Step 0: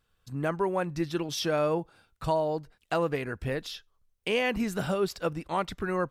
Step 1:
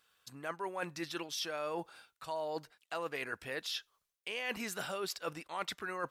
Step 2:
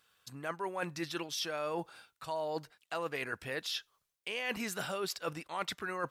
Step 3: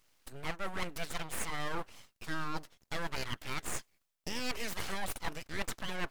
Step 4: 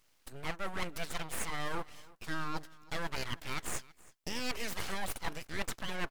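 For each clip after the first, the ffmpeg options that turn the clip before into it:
ffmpeg -i in.wav -af "highpass=frequency=1300:poles=1,areverse,acompressor=threshold=-43dB:ratio=6,areverse,volume=7dB" out.wav
ffmpeg -i in.wav -af "equalizer=frequency=120:width_type=o:width=1.5:gain=4.5,volume=1.5dB" out.wav
ffmpeg -i in.wav -af "aeval=exprs='abs(val(0))':channel_layout=same,volume=2.5dB" out.wav
ffmpeg -i in.wav -af "aecho=1:1:327:0.0794" out.wav

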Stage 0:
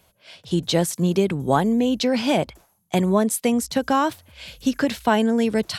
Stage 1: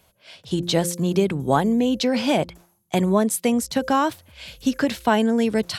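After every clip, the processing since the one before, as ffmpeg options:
ffmpeg -i in.wav -af "bandreject=frequency=174.2:width_type=h:width=4,bandreject=frequency=348.4:width_type=h:width=4,bandreject=frequency=522.6:width_type=h:width=4" out.wav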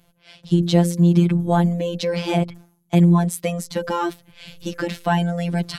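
ffmpeg -i in.wav -af "bass=frequency=250:gain=10,treble=frequency=4000:gain=-3,afftfilt=real='hypot(re,im)*cos(PI*b)':imag='0':win_size=1024:overlap=0.75,volume=1.5dB" out.wav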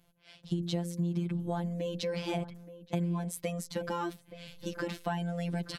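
ffmpeg -i in.wav -filter_complex "[0:a]acompressor=threshold=-20dB:ratio=5,asplit=2[link_01][link_02];[link_02]adelay=874.6,volume=-14dB,highshelf=frequency=4000:gain=-19.7[link_03];[link_01][link_03]amix=inputs=2:normalize=0,volume=-9dB" out.wav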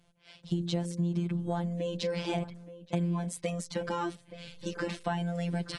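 ffmpeg -i in.wav -af "volume=1.5dB" -ar 22050 -c:a aac -b:a 32k out.aac

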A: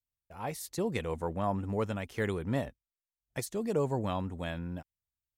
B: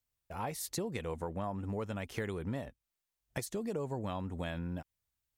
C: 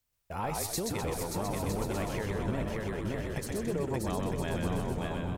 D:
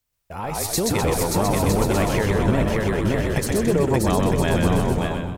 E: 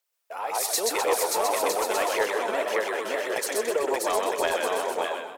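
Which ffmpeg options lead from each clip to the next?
ffmpeg -i in.wav -af "acompressor=threshold=-41dB:ratio=6,volume=6dB" out.wav
ffmpeg -i in.wav -filter_complex "[0:a]asplit=2[link_01][link_02];[link_02]aecho=0:1:580|957|1202|1361|1465:0.631|0.398|0.251|0.158|0.1[link_03];[link_01][link_03]amix=inputs=2:normalize=0,alimiter=level_in=5dB:limit=-24dB:level=0:latency=1:release=440,volume=-5dB,asplit=2[link_04][link_05];[link_05]asplit=6[link_06][link_07][link_08][link_09][link_10][link_11];[link_06]adelay=127,afreqshift=-57,volume=-3dB[link_12];[link_07]adelay=254,afreqshift=-114,volume=-9.9dB[link_13];[link_08]adelay=381,afreqshift=-171,volume=-16.9dB[link_14];[link_09]adelay=508,afreqshift=-228,volume=-23.8dB[link_15];[link_10]adelay=635,afreqshift=-285,volume=-30.7dB[link_16];[link_11]adelay=762,afreqshift=-342,volume=-37.7dB[link_17];[link_12][link_13][link_14][link_15][link_16][link_17]amix=inputs=6:normalize=0[link_18];[link_04][link_18]amix=inputs=2:normalize=0,volume=5dB" out.wav
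ffmpeg -i in.wav -af "dynaudnorm=framelen=450:gausssize=3:maxgain=10.5dB,volume=2.5dB" out.wav
ffmpeg -i in.wav -af "highpass=frequency=460:width=0.5412,highpass=frequency=460:width=1.3066,volume=16.5dB,asoftclip=hard,volume=-16.5dB,aphaser=in_gain=1:out_gain=1:delay=4.7:decay=0.4:speed=1.8:type=sinusoidal,volume=-1.5dB" out.wav

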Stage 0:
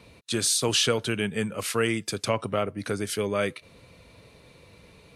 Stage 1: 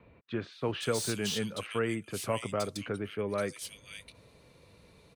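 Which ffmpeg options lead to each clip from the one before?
ffmpeg -i in.wav -filter_complex "[0:a]acrossover=split=2500[link_01][link_02];[link_02]adelay=520[link_03];[link_01][link_03]amix=inputs=2:normalize=0,acrossover=split=520|2600[link_04][link_05][link_06];[link_06]asoftclip=type=tanh:threshold=-28.5dB[link_07];[link_04][link_05][link_07]amix=inputs=3:normalize=0,volume=-5.5dB" out.wav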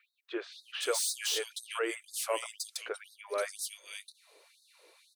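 ffmpeg -i in.wav -af "highshelf=frequency=4500:gain=6,afftfilt=real='re*gte(b*sr/1024,300*pow(3700/300,0.5+0.5*sin(2*PI*2*pts/sr)))':imag='im*gte(b*sr/1024,300*pow(3700/300,0.5+0.5*sin(2*PI*2*pts/sr)))':win_size=1024:overlap=0.75" out.wav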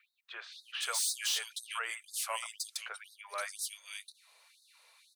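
ffmpeg -i in.wav -af "highpass=frequency=800:width=0.5412,highpass=frequency=800:width=1.3066" out.wav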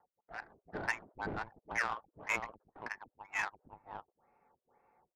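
ffmpeg -i in.wav -af "lowpass=frequency=2700:width_type=q:width=0.5098,lowpass=frequency=2700:width_type=q:width=0.6013,lowpass=frequency=2700:width_type=q:width=0.9,lowpass=frequency=2700:width_type=q:width=2.563,afreqshift=-3200,adynamicsmooth=sensitivity=5:basefreq=760,volume=5dB" out.wav

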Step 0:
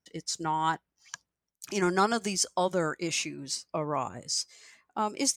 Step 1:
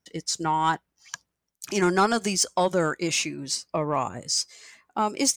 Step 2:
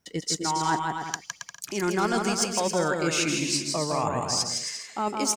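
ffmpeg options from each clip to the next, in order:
ffmpeg -i in.wav -af "asoftclip=type=tanh:threshold=-16.5dB,volume=5.5dB" out.wav
ffmpeg -i in.wav -af "areverse,acompressor=threshold=-30dB:ratio=6,areverse,aecho=1:1:160|272|350.4|405.3|443.7:0.631|0.398|0.251|0.158|0.1,volume=5.5dB" out.wav

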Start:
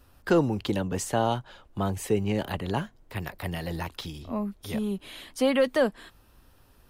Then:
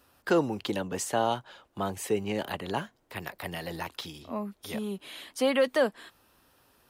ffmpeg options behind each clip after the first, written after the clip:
ffmpeg -i in.wav -af "highpass=frequency=330:poles=1" out.wav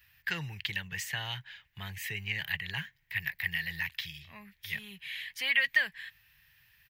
ffmpeg -i in.wav -af "firequalizer=gain_entry='entry(150,0);entry(240,-28);entry(390,-23);entry(560,-26);entry(880,-15);entry(1300,-14);entry(1800,11);entry(3600,0);entry(9100,-11);entry(15000,6)':delay=0.05:min_phase=1" out.wav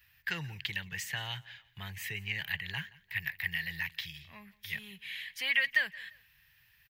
ffmpeg -i in.wav -af "aecho=1:1:173|346:0.075|0.0247,volume=-1.5dB" out.wav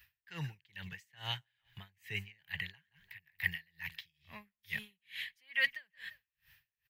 ffmpeg -i in.wav -af "aeval=exprs='val(0)*pow(10,-36*(0.5-0.5*cos(2*PI*2.3*n/s))/20)':channel_layout=same,volume=2.5dB" out.wav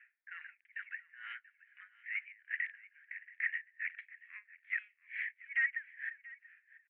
ffmpeg -i in.wav -af "aresample=16000,asoftclip=type=tanh:threshold=-33dB,aresample=44100,asuperpass=centerf=1800:order=8:qfactor=1.8,aecho=1:1:683:0.1,volume=7dB" out.wav

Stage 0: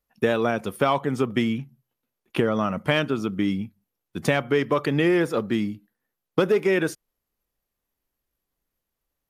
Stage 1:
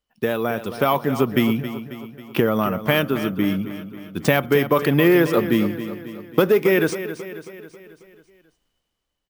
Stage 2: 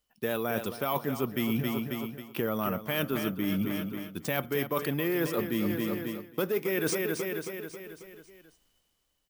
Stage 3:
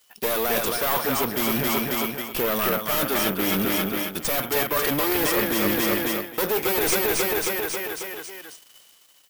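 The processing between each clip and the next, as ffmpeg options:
ffmpeg -i in.wav -af "dynaudnorm=framelen=160:gausssize=11:maxgain=12dB,acrusher=samples=3:mix=1:aa=0.000001,aecho=1:1:271|542|813|1084|1355|1626:0.251|0.136|0.0732|0.0396|0.0214|0.0115,volume=-1dB" out.wav
ffmpeg -i in.wav -af "highshelf=frequency=5300:gain=9.5,areverse,acompressor=threshold=-26dB:ratio=10,areverse" out.wav
ffmpeg -i in.wav -filter_complex "[0:a]aeval=exprs='if(lt(val(0),0),0.251*val(0),val(0))':channel_layout=same,crystalizer=i=3.5:c=0,asplit=2[link_01][link_02];[link_02]highpass=frequency=720:poles=1,volume=28dB,asoftclip=type=tanh:threshold=-3.5dB[link_03];[link_01][link_03]amix=inputs=2:normalize=0,lowpass=frequency=2600:poles=1,volume=-6dB" out.wav

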